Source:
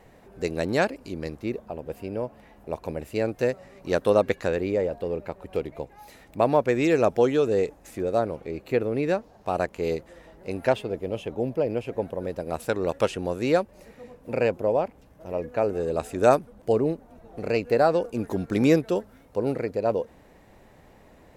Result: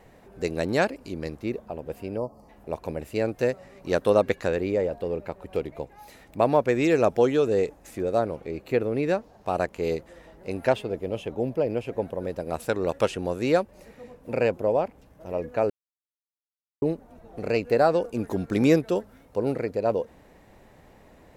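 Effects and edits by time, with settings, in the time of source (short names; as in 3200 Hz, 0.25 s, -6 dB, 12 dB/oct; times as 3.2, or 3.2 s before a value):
2.18–2.49 spectral gain 1300–4200 Hz -22 dB
15.7–16.82 mute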